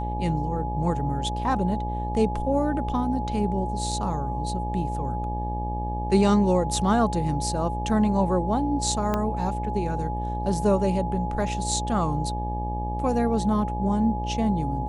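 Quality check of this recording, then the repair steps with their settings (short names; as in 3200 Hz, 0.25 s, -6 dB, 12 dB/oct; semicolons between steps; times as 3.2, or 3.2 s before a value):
buzz 60 Hz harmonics 16 -30 dBFS
tone 840 Hz -31 dBFS
9.14 pop -12 dBFS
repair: de-click; notch 840 Hz, Q 30; de-hum 60 Hz, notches 16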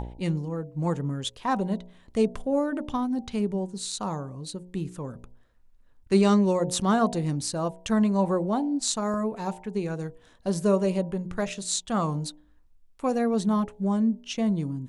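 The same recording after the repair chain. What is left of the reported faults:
9.14 pop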